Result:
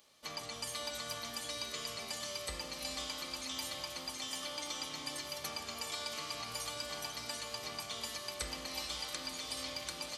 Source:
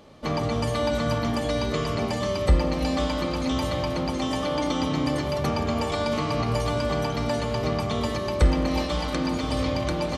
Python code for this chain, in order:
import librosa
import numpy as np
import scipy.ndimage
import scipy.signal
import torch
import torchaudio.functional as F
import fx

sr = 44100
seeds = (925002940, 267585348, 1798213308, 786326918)

y = librosa.effects.preemphasis(x, coef=0.97, zi=[0.0])
y = fx.echo_diffused(y, sr, ms=452, feedback_pct=66, wet_db=-11.5)